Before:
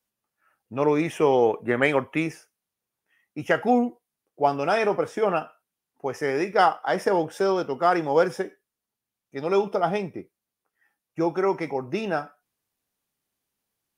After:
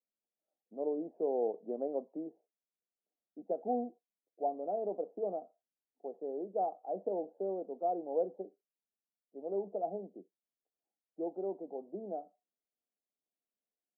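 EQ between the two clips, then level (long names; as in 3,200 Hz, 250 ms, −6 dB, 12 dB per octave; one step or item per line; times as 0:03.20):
Chebyshev band-pass filter 190–720 Hz, order 4
low-shelf EQ 500 Hz −10.5 dB
−6.5 dB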